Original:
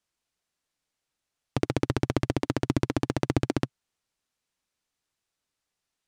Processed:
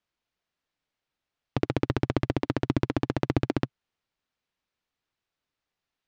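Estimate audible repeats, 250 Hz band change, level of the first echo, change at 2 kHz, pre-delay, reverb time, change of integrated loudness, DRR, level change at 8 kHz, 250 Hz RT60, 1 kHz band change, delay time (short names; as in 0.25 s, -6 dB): none, 0.0 dB, none, 0.0 dB, none, none, 0.0 dB, none, n/a, none, 0.0 dB, none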